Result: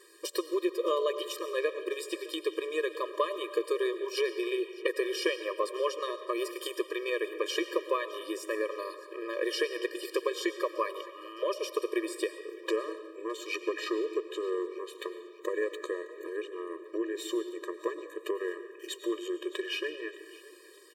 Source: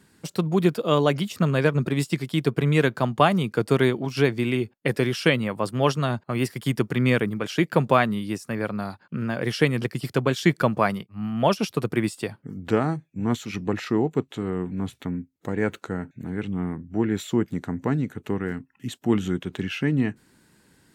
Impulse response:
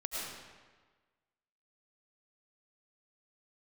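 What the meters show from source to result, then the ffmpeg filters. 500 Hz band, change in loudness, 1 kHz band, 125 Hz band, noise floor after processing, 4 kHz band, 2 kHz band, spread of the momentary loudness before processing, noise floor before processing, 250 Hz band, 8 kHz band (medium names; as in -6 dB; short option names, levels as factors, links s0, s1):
-5.5 dB, -9.0 dB, -10.0 dB, under -40 dB, -51 dBFS, -4.5 dB, -8.0 dB, 10 LU, -64 dBFS, -13.5 dB, -4.0 dB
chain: -filter_complex "[0:a]acompressor=threshold=0.0282:ratio=6,aecho=1:1:612|1224|1836|2448|3060:0.0944|0.0548|0.0318|0.0184|0.0107,asplit=2[s0][s1];[1:a]atrim=start_sample=2205[s2];[s1][s2]afir=irnorm=-1:irlink=0,volume=0.282[s3];[s0][s3]amix=inputs=2:normalize=0,afftfilt=real='re*eq(mod(floor(b*sr/1024/320),2),1)':imag='im*eq(mod(floor(b*sr/1024/320),2),1)':win_size=1024:overlap=0.75,volume=1.88"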